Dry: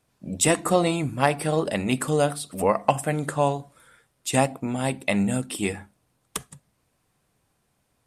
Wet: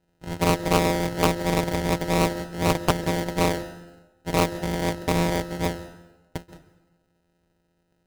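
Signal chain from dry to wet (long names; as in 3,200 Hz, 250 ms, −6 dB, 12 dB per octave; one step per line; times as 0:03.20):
samples sorted by size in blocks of 256 samples
dynamic equaliser 550 Hz, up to +4 dB, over −34 dBFS, Q 1.9
decimation without filtering 39×
convolution reverb RT60 1.1 s, pre-delay 123 ms, DRR 15.5 dB
highs frequency-modulated by the lows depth 0.96 ms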